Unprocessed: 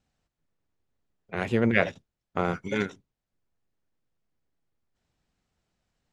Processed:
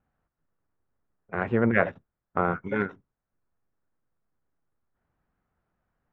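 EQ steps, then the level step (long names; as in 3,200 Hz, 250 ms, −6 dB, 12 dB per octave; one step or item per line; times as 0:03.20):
low-pass with resonance 1,400 Hz, resonance Q 1.7
0.0 dB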